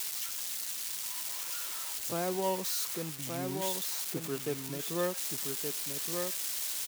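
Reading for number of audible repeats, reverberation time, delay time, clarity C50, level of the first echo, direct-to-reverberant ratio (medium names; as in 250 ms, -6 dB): 1, no reverb, 1173 ms, no reverb, -5.0 dB, no reverb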